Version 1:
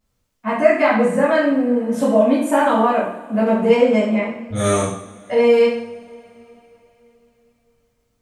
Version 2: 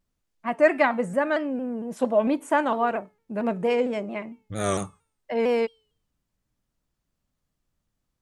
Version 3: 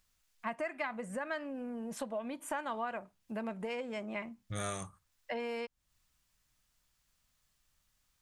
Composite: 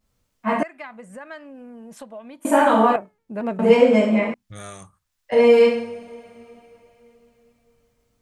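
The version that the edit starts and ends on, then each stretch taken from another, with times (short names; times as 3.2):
1
0.63–2.45 from 3
2.96–3.59 from 2
4.34–5.32 from 3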